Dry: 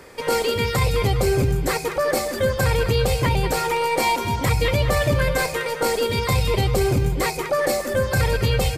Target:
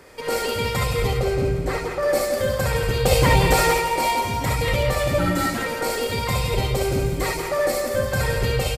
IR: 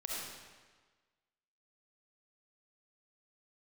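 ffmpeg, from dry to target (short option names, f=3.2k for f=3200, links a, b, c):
-filter_complex "[0:a]asettb=1/sr,asplit=3[a][b][c];[a]atrim=end=1.184[d];[b]atrim=start=1.18:end=2.03,asetpts=PTS-STARTPTS,afade=t=in:d=0.004:c=qsin,afade=t=out:st=0.846:d=0.004:c=qsin,lowpass=f=2.6k:p=1[e];[c]atrim=start=2.026[f];[d][e]acrossfade=d=0.004:c1=hsin:c2=qsin[g];[g][f]acrossfade=d=0.004:c1=qsin:c2=hsin,asettb=1/sr,asplit=3[h][i][j];[h]atrim=end=3.054[k];[i]atrim=start=3.05:end=3.74,asetpts=PTS-STARTPTS,afade=t=in:d=0.004:c=qsin,afade=t=out:st=0.686:d=0.004:c=qsin,acontrast=86[l];[j]atrim=start=3.736[m];[k][l]acrossfade=d=0.004:c1=hsin:c2=qsin[n];[n][m]acrossfade=d=0.004:c1=qsin:c2=hsin,asettb=1/sr,asplit=3[o][p][q];[o]atrim=end=5.184[r];[p]atrim=start=5.18:end=5.58,asetpts=PTS-STARTPTS,afade=t=in:d=0.004:c=qsin,afade=t=out:st=0.396:d=0.004:c=qsin,afreqshift=-230[s];[q]atrim=start=5.576[t];[r][s]acrossfade=d=0.004:c1=hsin:c2=qsin[u];[u][t]acrossfade=d=0.004:c1=qsin:c2=hsin,aecho=1:1:168|336|504|672:0.376|0.143|0.0543|0.0206[v];[1:a]atrim=start_sample=2205,atrim=end_sample=3528[w];[v][w]afir=irnorm=-1:irlink=0"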